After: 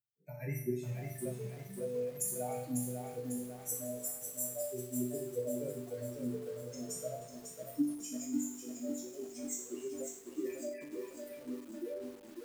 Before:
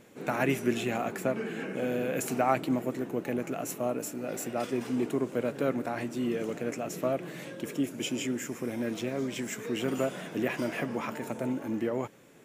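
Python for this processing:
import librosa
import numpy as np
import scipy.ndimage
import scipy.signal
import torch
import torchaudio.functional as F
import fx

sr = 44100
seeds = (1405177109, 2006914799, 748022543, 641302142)

y = fx.bin_expand(x, sr, power=3.0)
y = scipy.signal.sosfilt(scipy.signal.butter(2, 60.0, 'highpass', fs=sr, output='sos'), y)
y = fx.low_shelf(y, sr, hz=470.0, db=-6.5)
y = fx.filter_sweep_highpass(y, sr, from_hz=120.0, to_hz=310.0, start_s=7.32, end_s=8.67, q=4.6)
y = fx.curve_eq(y, sr, hz=(110.0, 180.0, 330.0, 560.0, 1300.0, 2100.0, 3200.0, 5400.0, 8900.0), db=(0, -1, 0, 1, -29, -6, -25, 0, 9))
y = fx.rider(y, sr, range_db=3, speed_s=0.5)
y = fx.resonator_bank(y, sr, root=43, chord='major', decay_s=0.63)
y = fx.echo_feedback(y, sr, ms=306, feedback_pct=36, wet_db=-20.5)
y = fx.echo_crushed(y, sr, ms=548, feedback_pct=55, bits=12, wet_db=-5.0)
y = y * librosa.db_to_amplitude(18.0)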